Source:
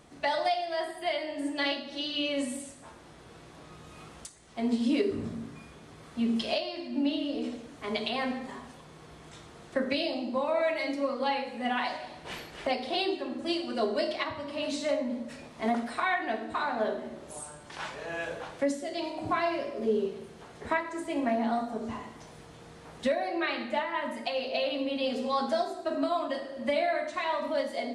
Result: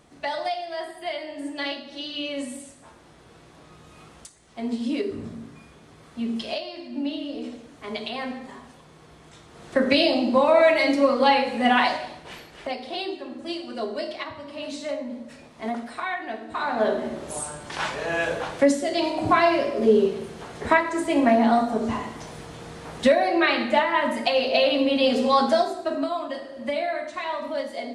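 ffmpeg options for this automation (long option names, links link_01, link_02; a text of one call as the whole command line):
ffmpeg -i in.wav -af "volume=22dB,afade=type=in:start_time=9.48:duration=0.51:silence=0.281838,afade=type=out:start_time=11.81:duration=0.49:silence=0.251189,afade=type=in:start_time=16.47:duration=0.58:silence=0.281838,afade=type=out:start_time=25.33:duration=0.8:silence=0.354813" out.wav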